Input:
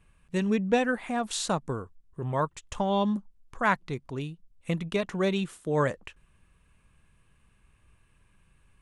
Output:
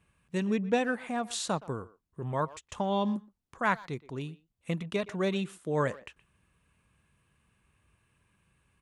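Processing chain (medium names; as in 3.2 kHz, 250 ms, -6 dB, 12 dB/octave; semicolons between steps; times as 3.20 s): high-pass 73 Hz 12 dB/octave; speakerphone echo 120 ms, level -18 dB; trim -3 dB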